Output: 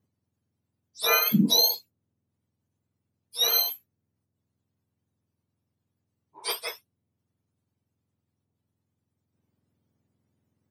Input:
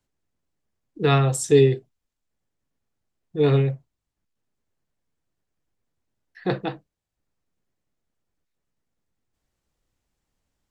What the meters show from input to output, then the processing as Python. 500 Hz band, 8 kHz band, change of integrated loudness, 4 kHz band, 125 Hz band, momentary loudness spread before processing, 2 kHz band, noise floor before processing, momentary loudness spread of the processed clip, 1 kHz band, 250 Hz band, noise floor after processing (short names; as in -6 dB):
-14.5 dB, +4.5 dB, -1.5 dB, +11.5 dB, -14.5 dB, 16 LU, +1.5 dB, -83 dBFS, 17 LU, -3.5 dB, -3.0 dB, -83 dBFS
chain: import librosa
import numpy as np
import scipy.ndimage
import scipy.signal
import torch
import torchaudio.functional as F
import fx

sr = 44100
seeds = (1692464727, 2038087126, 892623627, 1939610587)

y = fx.octave_mirror(x, sr, pivot_hz=1300.0)